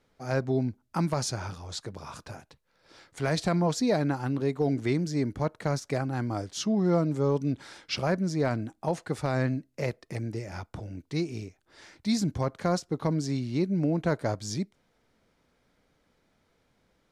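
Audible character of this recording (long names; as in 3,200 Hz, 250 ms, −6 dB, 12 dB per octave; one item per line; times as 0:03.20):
background noise floor −72 dBFS
spectral slope −6.5 dB per octave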